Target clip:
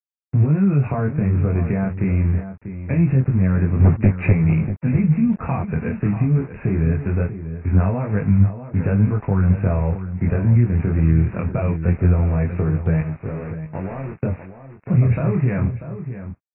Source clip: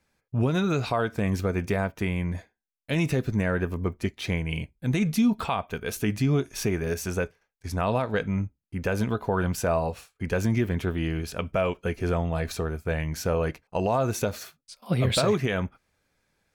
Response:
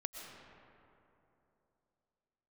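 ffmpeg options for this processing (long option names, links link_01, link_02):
-filter_complex "[0:a]equalizer=frequency=140:width=0.49:gain=11.5,asettb=1/sr,asplit=3[link_01][link_02][link_03];[link_01]atrim=end=13.004[link_04];[link_02]atrim=start=13:end=14.23,asetpts=PTS-STARTPTS,afade=type=in:duration=0.004:curve=qsin,afade=type=out:start_time=1.226:duration=0.004:curve=qsin,acompressor=threshold=-29dB:ratio=16[link_05];[link_03]atrim=start=14.226[link_06];[link_04][link_05]acrossfade=duration=0.004:curve1=hsin:curve2=qsin[link_07];[link_07][link_06]acrossfade=duration=0.004:curve1=qsin:curve2=hsin,alimiter=limit=-10.5dB:level=0:latency=1:release=57,acrossover=split=160[link_08][link_09];[link_09]acompressor=threshold=-28dB:ratio=3[link_10];[link_08][link_10]amix=inputs=2:normalize=0,aeval=exprs='val(0)*gte(abs(val(0)),0.015)':channel_layout=same,flanger=delay=19:depth=6.7:speed=0.23,asettb=1/sr,asplit=3[link_11][link_12][link_13];[link_11]atrim=end=3.804[link_14];[link_12]atrim=start=3.8:end=4.33,asetpts=PTS-STARTPTS,afade=type=in:duration=0.004:curve=qsin,afade=type=out:start_time=0.526:duration=0.004:curve=qsin,aeval=exprs='0.211*sin(PI/2*1.58*val(0)/0.211)':channel_layout=same[link_15];[link_13]atrim=start=4.326[link_16];[link_14][link_15]acrossfade=duration=0.004:curve1=hsin:curve2=qsin[link_17];[link_17][link_16]acrossfade=duration=0.004:curve1=qsin:curve2=hsin,asuperstop=centerf=3400:order=8:qfactor=1.8,asplit=2[link_18][link_19];[link_19]adelay=641.4,volume=-11dB,highshelf=frequency=4000:gain=-14.4[link_20];[link_18][link_20]amix=inputs=2:normalize=0,volume=7dB" -ar 16000 -c:a aac -b:a 16k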